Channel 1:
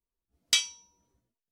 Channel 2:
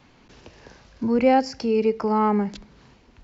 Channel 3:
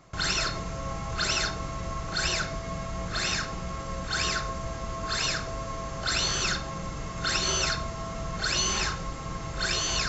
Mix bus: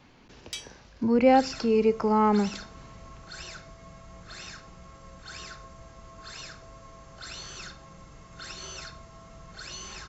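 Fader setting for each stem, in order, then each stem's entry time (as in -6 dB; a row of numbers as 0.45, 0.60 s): -13.5, -1.5, -14.0 dB; 0.00, 0.00, 1.15 s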